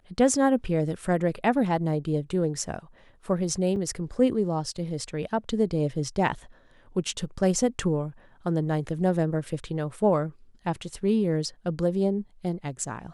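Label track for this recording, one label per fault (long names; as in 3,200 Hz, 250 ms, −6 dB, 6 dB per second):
3.760000	3.760000	drop-out 4.7 ms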